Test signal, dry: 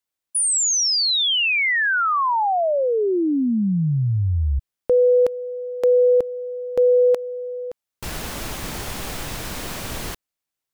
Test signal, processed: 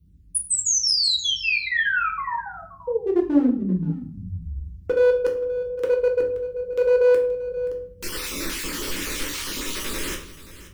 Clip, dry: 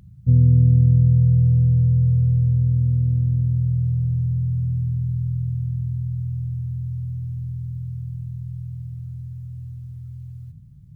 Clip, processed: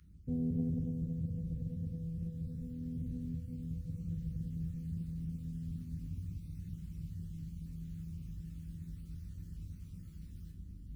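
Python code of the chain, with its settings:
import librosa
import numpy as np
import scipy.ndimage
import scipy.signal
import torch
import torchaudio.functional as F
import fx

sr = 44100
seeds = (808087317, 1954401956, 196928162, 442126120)

y = fx.spec_dropout(x, sr, seeds[0], share_pct=33)
y = fx.dmg_noise_band(y, sr, seeds[1], low_hz=40.0, high_hz=140.0, level_db=-41.0)
y = fx.peak_eq(y, sr, hz=220.0, db=-4.0, octaves=0.23)
y = fx.fixed_phaser(y, sr, hz=300.0, stages=4)
y = fx.rider(y, sr, range_db=4, speed_s=2.0)
y = np.clip(y, -10.0 ** (-16.5 / 20.0), 10.0 ** (-16.5 / 20.0))
y = fx.low_shelf(y, sr, hz=140.0, db=-10.0)
y = y + 10.0 ** (-16.5 / 20.0) * np.pad(y, (int(527 * sr / 1000.0), 0))[:len(y)]
y = fx.room_shoebox(y, sr, seeds[2], volume_m3=71.0, walls='mixed', distance_m=0.66)
y = fx.doppler_dist(y, sr, depth_ms=0.23)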